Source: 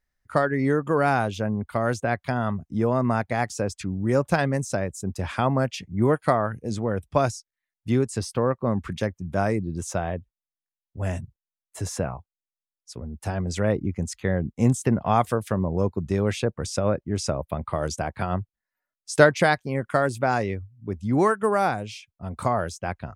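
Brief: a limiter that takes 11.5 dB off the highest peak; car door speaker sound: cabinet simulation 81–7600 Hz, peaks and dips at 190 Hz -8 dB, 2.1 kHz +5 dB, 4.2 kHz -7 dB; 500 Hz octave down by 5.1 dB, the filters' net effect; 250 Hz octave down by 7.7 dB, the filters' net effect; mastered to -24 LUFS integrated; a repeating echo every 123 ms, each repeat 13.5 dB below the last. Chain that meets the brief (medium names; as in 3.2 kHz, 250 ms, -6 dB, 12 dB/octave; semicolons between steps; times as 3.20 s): peaking EQ 250 Hz -5.5 dB; peaking EQ 500 Hz -5 dB; peak limiter -15.5 dBFS; cabinet simulation 81–7600 Hz, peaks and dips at 190 Hz -8 dB, 2.1 kHz +5 dB, 4.2 kHz -7 dB; feedback delay 123 ms, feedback 21%, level -13.5 dB; trim +6.5 dB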